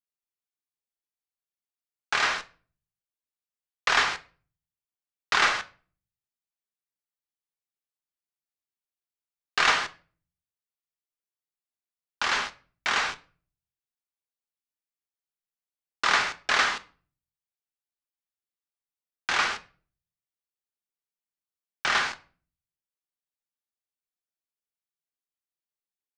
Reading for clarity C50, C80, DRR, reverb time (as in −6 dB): 19.0 dB, 24.5 dB, 9.5 dB, 0.40 s